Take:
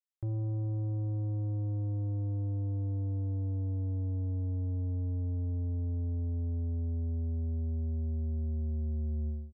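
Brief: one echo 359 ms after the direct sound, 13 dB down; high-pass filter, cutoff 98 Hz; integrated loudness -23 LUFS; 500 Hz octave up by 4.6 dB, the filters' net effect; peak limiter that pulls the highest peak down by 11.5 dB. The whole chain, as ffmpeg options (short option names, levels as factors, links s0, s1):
-af "highpass=98,equalizer=f=500:t=o:g=5.5,alimiter=level_in=5.62:limit=0.0631:level=0:latency=1,volume=0.178,aecho=1:1:359:0.224,volume=15.8"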